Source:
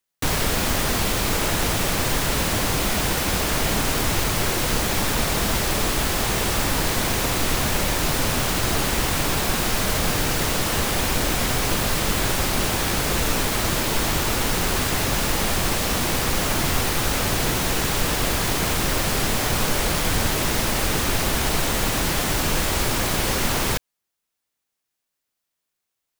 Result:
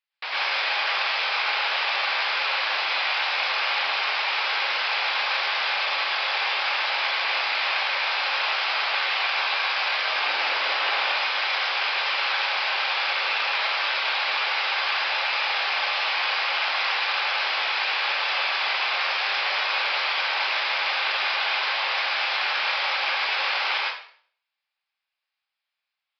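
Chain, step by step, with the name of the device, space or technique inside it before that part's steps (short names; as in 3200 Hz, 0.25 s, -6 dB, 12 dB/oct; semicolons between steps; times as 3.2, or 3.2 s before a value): 10.09–11.02 low shelf 430 Hz +9.5 dB; plate-style reverb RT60 0.52 s, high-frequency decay 0.95×, pre-delay 90 ms, DRR -5 dB; musical greeting card (downsampling 11025 Hz; HPF 700 Hz 24 dB/oct; bell 2400 Hz +7 dB 0.57 oct); gain -6 dB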